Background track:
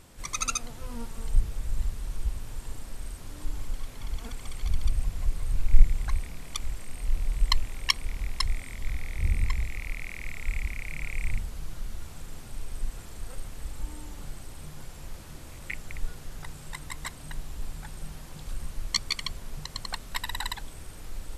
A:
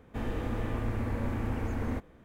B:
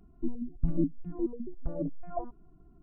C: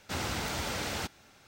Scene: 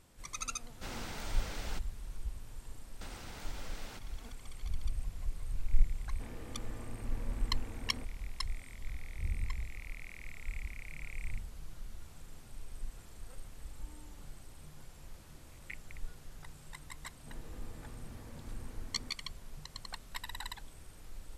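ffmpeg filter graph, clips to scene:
ffmpeg -i bed.wav -i cue0.wav -i cue1.wav -i cue2.wav -filter_complex "[3:a]asplit=2[link_01][link_02];[1:a]asplit=2[link_03][link_04];[0:a]volume=-10dB[link_05];[link_02]acompressor=threshold=-44dB:ratio=6:attack=3.2:release=140:knee=1:detection=peak[link_06];[link_04]asoftclip=type=tanh:threshold=-26dB[link_07];[link_01]atrim=end=1.47,asetpts=PTS-STARTPTS,volume=-10dB,afade=type=in:duration=0.004:curve=hsin,afade=type=out:start_time=1.466:duration=0.004:curve=hsin,adelay=720[link_08];[link_06]atrim=end=1.47,asetpts=PTS-STARTPTS,volume=-2.5dB,afade=type=in:duration=0.1,afade=type=out:start_time=1.37:duration=0.1,adelay=2920[link_09];[link_03]atrim=end=2.24,asetpts=PTS-STARTPTS,volume=-13.5dB,afade=type=in:duration=0.004:curve=hsin,afade=type=out:start_time=2.236:duration=0.004:curve=hsin,adelay=6050[link_10];[link_07]atrim=end=2.24,asetpts=PTS-STARTPTS,volume=-17dB,afade=type=in:duration=0.004:curve=hsin,afade=type=out:start_time=2.236:duration=0.004:curve=hsin,adelay=17120[link_11];[link_05][link_08][link_09][link_10][link_11]amix=inputs=5:normalize=0" out.wav

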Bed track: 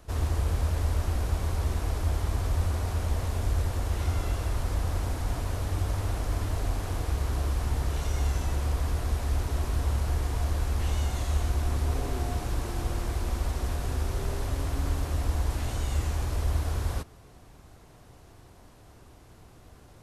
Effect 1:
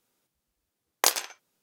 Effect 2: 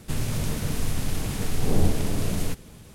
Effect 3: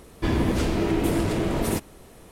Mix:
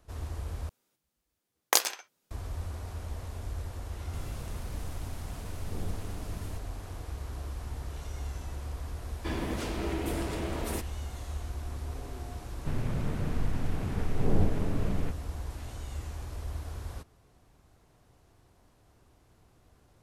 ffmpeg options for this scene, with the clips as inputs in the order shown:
ffmpeg -i bed.wav -i cue0.wav -i cue1.wav -i cue2.wav -filter_complex "[2:a]asplit=2[link_01][link_02];[0:a]volume=-10dB[link_03];[3:a]lowshelf=frequency=330:gain=-7.5[link_04];[link_02]lowpass=1900[link_05];[link_03]asplit=2[link_06][link_07];[link_06]atrim=end=0.694[link_08];[1:a]atrim=end=1.62,asetpts=PTS-STARTPTS,volume=-1.5dB[link_09];[link_07]atrim=start=2.306[link_10];[link_01]atrim=end=2.94,asetpts=PTS-STARTPTS,volume=-16.5dB,afade=type=in:duration=0.004:curve=hsin,afade=type=out:start_time=2.936:duration=0.004:curve=hsin,adelay=4040[link_11];[link_04]atrim=end=2.31,asetpts=PTS-STARTPTS,volume=-7dB,afade=type=in:duration=0.004:curve=hsin,afade=type=out:start_time=2.306:duration=0.004:curve=hsin,adelay=9020[link_12];[link_05]atrim=end=2.94,asetpts=PTS-STARTPTS,volume=-4dB,afade=type=in:duration=0.004:curve=hsin,afade=type=out:start_time=2.936:duration=0.004:curve=hsin,adelay=12570[link_13];[link_08][link_09]acrossfade=duration=0.004:curve1=hsin:curve2=hsin[link_14];[link_14][link_10]acrossfade=duration=0.004:curve1=hsin:curve2=hsin[link_15];[link_15][link_11][link_12][link_13]amix=inputs=4:normalize=0" out.wav

